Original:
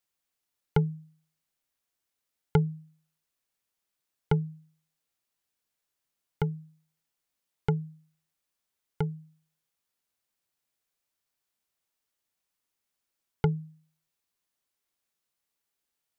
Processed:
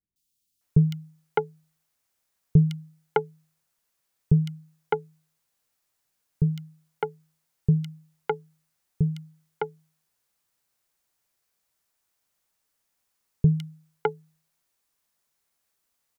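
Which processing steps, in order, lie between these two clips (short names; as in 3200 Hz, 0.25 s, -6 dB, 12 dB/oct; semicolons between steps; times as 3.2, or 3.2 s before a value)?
three bands offset in time lows, highs, mids 0.16/0.61 s, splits 310/3100 Hz; gain +7.5 dB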